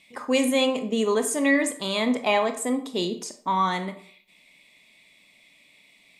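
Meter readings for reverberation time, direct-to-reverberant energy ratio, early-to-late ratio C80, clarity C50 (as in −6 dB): 0.55 s, 8.0 dB, 15.0 dB, 11.5 dB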